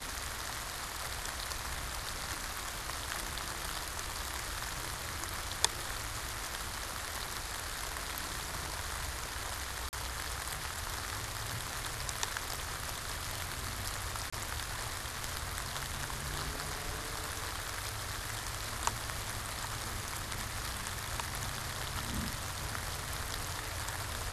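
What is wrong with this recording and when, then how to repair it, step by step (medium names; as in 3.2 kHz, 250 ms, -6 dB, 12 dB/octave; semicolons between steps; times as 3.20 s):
9.89–9.93 s: dropout 39 ms
14.30–14.32 s: dropout 25 ms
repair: interpolate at 9.89 s, 39 ms; interpolate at 14.30 s, 25 ms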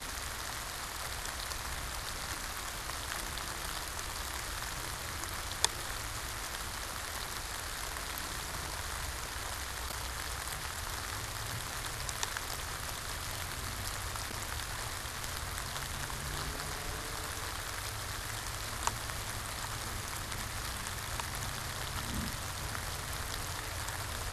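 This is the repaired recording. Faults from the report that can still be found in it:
nothing left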